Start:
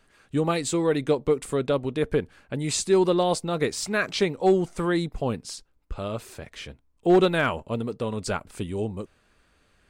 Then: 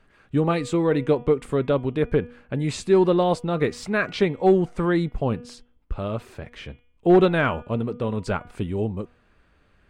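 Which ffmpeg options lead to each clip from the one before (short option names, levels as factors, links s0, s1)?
-af "bass=f=250:g=3,treble=f=4000:g=-13,bandreject=f=242.1:t=h:w=4,bandreject=f=484.2:t=h:w=4,bandreject=f=726.3:t=h:w=4,bandreject=f=968.4:t=h:w=4,bandreject=f=1210.5:t=h:w=4,bandreject=f=1452.6:t=h:w=4,bandreject=f=1694.7:t=h:w=4,bandreject=f=1936.8:t=h:w=4,bandreject=f=2178.9:t=h:w=4,bandreject=f=2421:t=h:w=4,bandreject=f=2663.1:t=h:w=4,bandreject=f=2905.2:t=h:w=4,bandreject=f=3147.3:t=h:w=4,bandreject=f=3389.4:t=h:w=4,volume=1.26"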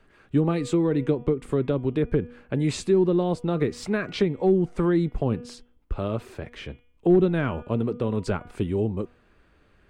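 -filter_complex "[0:a]equalizer=f=360:w=2:g=4.5,acrossover=split=290[s0][s1];[s1]acompressor=threshold=0.0562:ratio=10[s2];[s0][s2]amix=inputs=2:normalize=0"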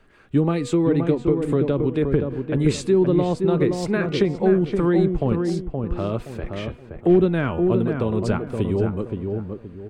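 -filter_complex "[0:a]asplit=2[s0][s1];[s1]adelay=522,lowpass=f=1300:p=1,volume=0.596,asplit=2[s2][s3];[s3]adelay=522,lowpass=f=1300:p=1,volume=0.33,asplit=2[s4][s5];[s5]adelay=522,lowpass=f=1300:p=1,volume=0.33,asplit=2[s6][s7];[s7]adelay=522,lowpass=f=1300:p=1,volume=0.33[s8];[s0][s2][s4][s6][s8]amix=inputs=5:normalize=0,volume=1.33"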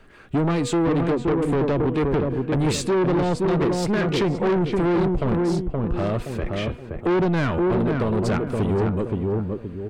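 -af "asoftclip=type=tanh:threshold=0.0708,volume=1.88"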